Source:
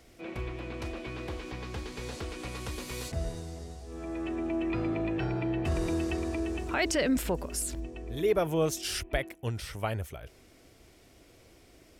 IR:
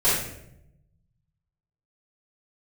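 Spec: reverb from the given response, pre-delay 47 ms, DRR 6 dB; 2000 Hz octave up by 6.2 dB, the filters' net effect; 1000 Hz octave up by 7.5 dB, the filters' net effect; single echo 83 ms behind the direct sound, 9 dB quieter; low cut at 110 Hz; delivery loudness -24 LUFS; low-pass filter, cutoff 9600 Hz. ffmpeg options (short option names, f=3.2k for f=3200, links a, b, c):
-filter_complex "[0:a]highpass=110,lowpass=9.6k,equalizer=f=1k:t=o:g=9,equalizer=f=2k:t=o:g=5,aecho=1:1:83:0.355,asplit=2[a][b];[1:a]atrim=start_sample=2205,adelay=47[c];[b][c]afir=irnorm=-1:irlink=0,volume=-22dB[d];[a][d]amix=inputs=2:normalize=0,volume=5.5dB"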